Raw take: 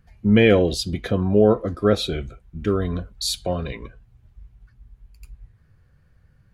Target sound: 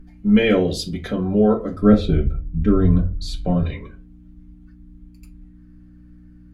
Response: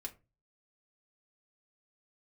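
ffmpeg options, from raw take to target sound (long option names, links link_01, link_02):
-filter_complex "[0:a]asettb=1/sr,asplit=3[link_01][link_02][link_03];[link_01]atrim=end=1.814[link_04];[link_02]atrim=start=1.81:end=3.63,asetpts=PTS-STARTPTS,afade=type=in:duration=0.004:curve=qsin,afade=type=out:start_time=1.816:duration=0.004:curve=qsin,aemphasis=mode=reproduction:type=riaa[link_05];[link_03]atrim=start=3.626[link_06];[link_04][link_05]acrossfade=duration=0.004:curve1=hsin:curve2=qsin[link_07];[link_07][link_06]acrossfade=duration=0.004:curve1=qsin:curve2=hsin,aeval=exprs='val(0)+0.01*(sin(2*PI*60*n/s)+sin(2*PI*2*60*n/s)/2+sin(2*PI*3*60*n/s)/3+sin(2*PI*4*60*n/s)/4+sin(2*PI*5*60*n/s)/5)':channel_layout=same[link_08];[1:a]atrim=start_sample=2205,asetrate=38367,aresample=44100[link_09];[link_08][link_09]afir=irnorm=-1:irlink=0,volume=1dB"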